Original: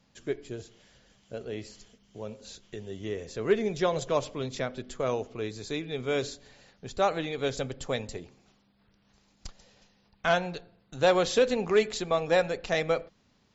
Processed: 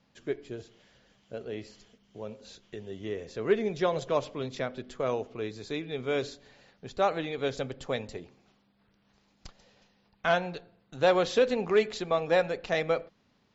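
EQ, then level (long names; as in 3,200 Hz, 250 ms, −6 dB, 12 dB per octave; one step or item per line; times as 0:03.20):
high-frequency loss of the air 97 metres
low-shelf EQ 94 Hz −7.5 dB
0.0 dB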